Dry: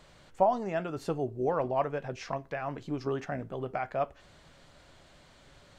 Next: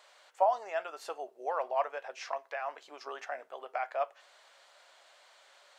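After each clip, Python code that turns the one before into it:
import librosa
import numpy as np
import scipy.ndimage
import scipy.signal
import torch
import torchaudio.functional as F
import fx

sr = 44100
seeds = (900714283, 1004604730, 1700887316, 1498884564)

y = scipy.signal.sosfilt(scipy.signal.butter(4, 600.0, 'highpass', fs=sr, output='sos'), x)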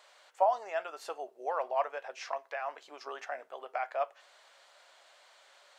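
y = x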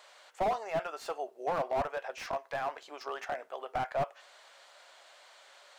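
y = fx.slew_limit(x, sr, full_power_hz=22.0)
y = F.gain(torch.from_numpy(y), 3.5).numpy()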